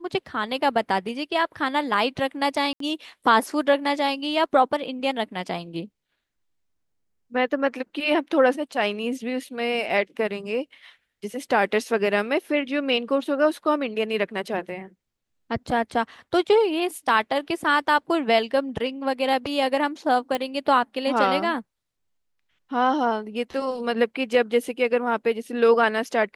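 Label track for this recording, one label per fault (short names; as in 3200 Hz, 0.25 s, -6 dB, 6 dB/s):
2.730000	2.800000	gap 73 ms
20.350000	20.350000	pop -12 dBFS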